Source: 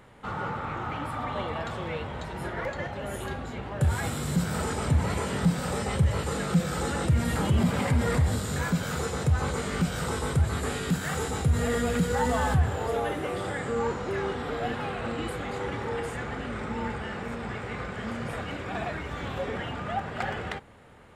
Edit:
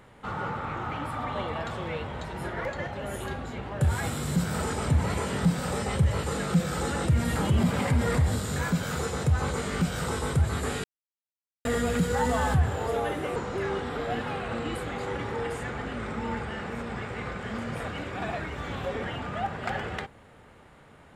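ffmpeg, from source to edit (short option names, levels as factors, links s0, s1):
-filter_complex "[0:a]asplit=4[s0][s1][s2][s3];[s0]atrim=end=10.84,asetpts=PTS-STARTPTS,afade=t=out:st=10.836:d=0.004:c=hsin[s4];[s1]atrim=start=10.84:end=11.65,asetpts=PTS-STARTPTS,volume=0[s5];[s2]atrim=start=11.65:end=13.362,asetpts=PTS-STARTPTS,afade=t=in:d=0.004:c=hsin[s6];[s3]atrim=start=13.888[s7];[s4][s5][s6]concat=n=3:v=0:a=1[s8];[s8][s7]acrossfade=d=0.004:c1=hsin:c2=hsin"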